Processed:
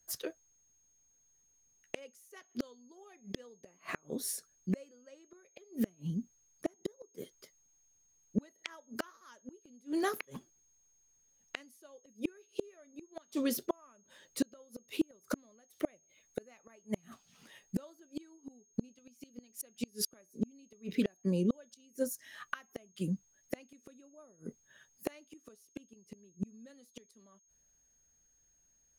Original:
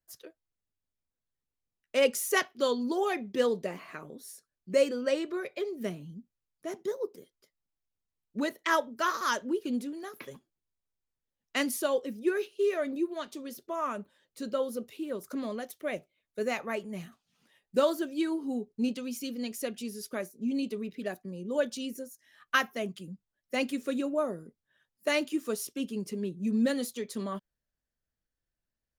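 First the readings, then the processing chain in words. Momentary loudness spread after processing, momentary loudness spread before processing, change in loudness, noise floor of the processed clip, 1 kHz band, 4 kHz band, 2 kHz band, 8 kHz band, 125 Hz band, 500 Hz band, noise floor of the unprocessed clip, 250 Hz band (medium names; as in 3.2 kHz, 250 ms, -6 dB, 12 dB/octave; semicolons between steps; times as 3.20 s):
22 LU, 16 LU, -8.0 dB, -71 dBFS, -13.5 dB, -9.5 dB, -13.0 dB, -4.5 dB, +3.0 dB, -12.5 dB, under -85 dBFS, -5.5 dB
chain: inverted gate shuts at -29 dBFS, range -37 dB; whistle 6.5 kHz -78 dBFS; trim +9.5 dB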